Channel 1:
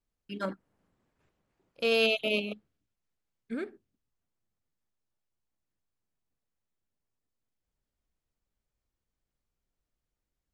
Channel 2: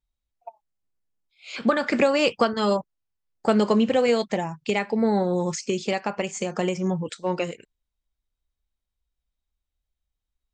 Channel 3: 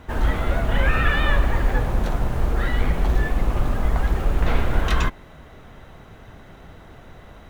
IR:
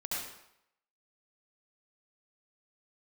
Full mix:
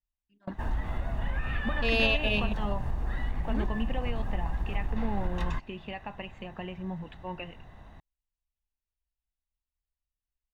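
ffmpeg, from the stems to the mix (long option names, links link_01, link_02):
-filter_complex "[0:a]adynamicequalizer=threshold=0.00708:dfrequency=1800:dqfactor=0.7:tfrequency=1800:tqfactor=0.7:attack=5:release=100:ratio=0.375:range=2.5:mode=boostabove:tftype=highshelf,volume=0dB[link_01];[1:a]highshelf=frequency=4200:width_type=q:width=3:gain=-13,alimiter=limit=-12dB:level=0:latency=1:release=231,volume=-12dB,asplit=2[link_02][link_03];[2:a]highshelf=frequency=5900:gain=8.5,acompressor=threshold=-21dB:ratio=6,adelay=500,volume=-8dB[link_04];[link_03]apad=whole_len=464683[link_05];[link_01][link_05]sidechaingate=range=-29dB:threshold=-57dB:ratio=16:detection=peak[link_06];[link_06][link_02][link_04]amix=inputs=3:normalize=0,aemphasis=mode=reproduction:type=75kf,aecho=1:1:1.1:0.47"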